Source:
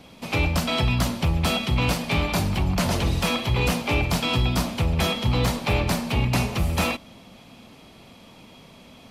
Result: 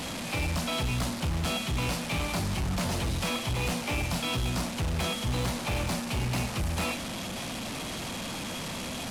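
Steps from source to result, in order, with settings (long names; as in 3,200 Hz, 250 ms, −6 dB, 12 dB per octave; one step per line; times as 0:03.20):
linear delta modulator 64 kbit/s, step −24 dBFS
notch filter 420 Hz, Q 12
hard clipping −20 dBFS, distortion −12 dB
level −5.5 dB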